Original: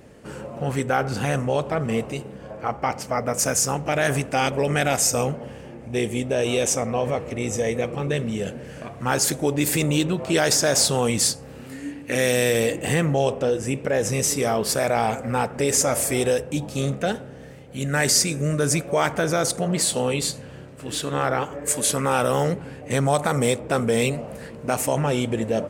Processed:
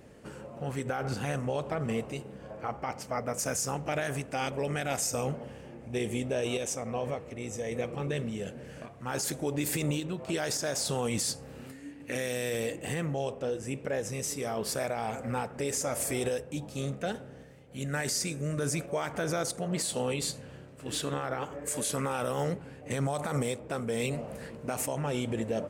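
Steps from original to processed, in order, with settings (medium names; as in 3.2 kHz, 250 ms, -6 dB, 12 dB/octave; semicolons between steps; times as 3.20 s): random-step tremolo; peak limiter -16.5 dBFS, peak gain reduction 9 dB; trim -5 dB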